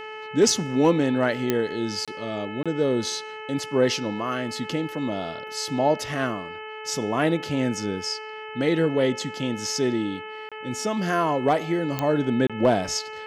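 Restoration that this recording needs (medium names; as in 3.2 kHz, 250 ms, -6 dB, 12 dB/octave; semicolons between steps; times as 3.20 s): clip repair -9.5 dBFS; de-click; de-hum 432.9 Hz, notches 7; interpolate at 2.05/2.63/10.49/12.47 s, 26 ms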